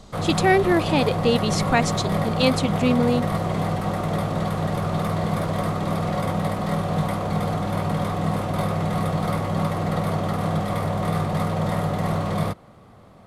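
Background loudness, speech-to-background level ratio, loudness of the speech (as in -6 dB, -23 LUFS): -24.5 LUFS, 2.0 dB, -22.5 LUFS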